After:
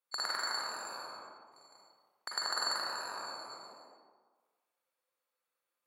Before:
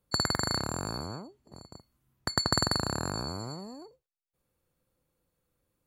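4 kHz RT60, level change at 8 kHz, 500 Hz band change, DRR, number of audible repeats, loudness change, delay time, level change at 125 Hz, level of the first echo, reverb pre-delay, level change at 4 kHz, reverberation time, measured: 0.80 s, −7.5 dB, −11.0 dB, −4.0 dB, no echo audible, −6.0 dB, no echo audible, below −35 dB, no echo audible, 38 ms, −5.5 dB, 1.4 s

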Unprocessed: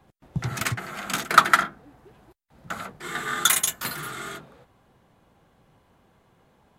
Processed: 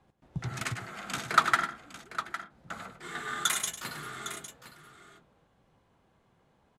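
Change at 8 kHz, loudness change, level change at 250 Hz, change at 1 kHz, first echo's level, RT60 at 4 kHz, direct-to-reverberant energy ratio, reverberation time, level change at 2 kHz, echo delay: −8.5 dB, −8.0 dB, −7.0 dB, −7.0 dB, −10.5 dB, no reverb audible, no reverb audible, no reverb audible, −7.0 dB, 100 ms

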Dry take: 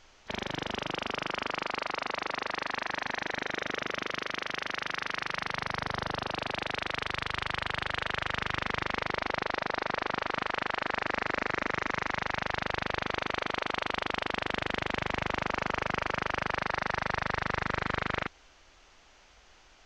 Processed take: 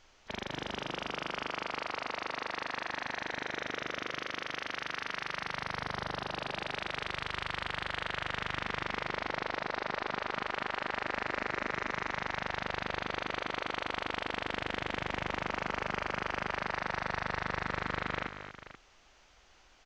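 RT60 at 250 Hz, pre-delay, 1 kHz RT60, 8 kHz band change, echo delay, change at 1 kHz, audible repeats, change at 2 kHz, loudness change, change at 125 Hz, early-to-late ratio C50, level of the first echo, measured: no reverb audible, no reverb audible, no reverb audible, −3.5 dB, 225 ms, −3.5 dB, 2, −3.5 dB, −3.5 dB, −4.0 dB, no reverb audible, −10.5 dB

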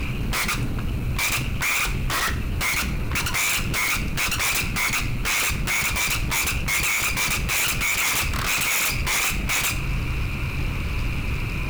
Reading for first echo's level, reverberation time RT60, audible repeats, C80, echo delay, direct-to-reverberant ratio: no echo audible, 0.45 s, no echo audible, 19.0 dB, no echo audible, 8.0 dB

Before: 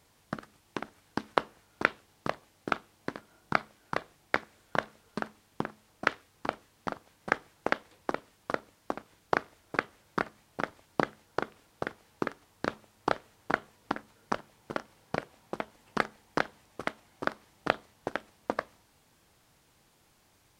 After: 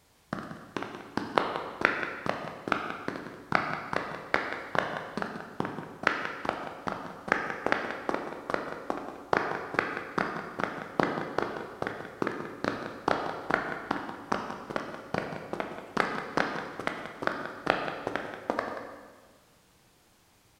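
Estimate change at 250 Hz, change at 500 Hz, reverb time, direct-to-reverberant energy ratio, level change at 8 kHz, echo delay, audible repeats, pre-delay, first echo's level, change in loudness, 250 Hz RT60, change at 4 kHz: +3.5 dB, +3.0 dB, 1.5 s, 2.5 dB, +2.0 dB, 182 ms, 1, 14 ms, −12.0 dB, +3.0 dB, 1.7 s, +3.0 dB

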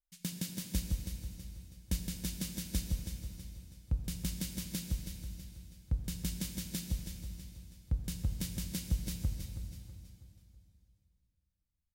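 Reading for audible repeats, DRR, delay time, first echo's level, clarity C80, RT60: 4, 2.5 dB, 324 ms, −9.0 dB, 4.0 dB, 2.9 s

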